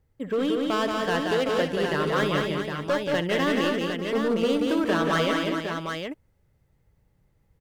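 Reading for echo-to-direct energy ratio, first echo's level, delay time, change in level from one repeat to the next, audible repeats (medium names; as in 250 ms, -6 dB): 0.5 dB, -14.0 dB, 64 ms, no regular repeats, 6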